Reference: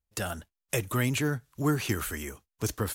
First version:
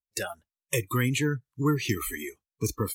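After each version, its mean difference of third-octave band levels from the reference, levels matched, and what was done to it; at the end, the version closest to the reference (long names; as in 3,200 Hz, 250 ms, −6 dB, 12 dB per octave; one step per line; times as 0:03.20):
8.0 dB: in parallel at 0 dB: downward compressor, threshold −37 dBFS, peak gain reduction 15 dB
on the sum: noise reduction from a noise print of the clip's start 25 dB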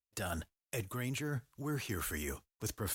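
4.0 dB: noise gate with hold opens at −55 dBFS
reversed playback
downward compressor 6 to 1, threshold −39 dBFS, peak gain reduction 16.5 dB
reversed playback
level +3 dB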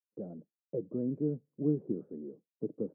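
19.0 dB: downward expander −53 dBFS
elliptic band-pass filter 160–510 Hz, stop band 70 dB
level −1.5 dB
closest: second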